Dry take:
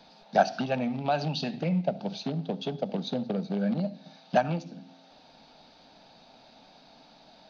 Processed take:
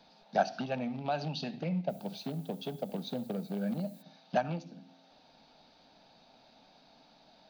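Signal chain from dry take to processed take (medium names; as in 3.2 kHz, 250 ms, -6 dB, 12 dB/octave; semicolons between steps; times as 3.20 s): 1.88–4.01 s: added noise violet -55 dBFS; trim -6 dB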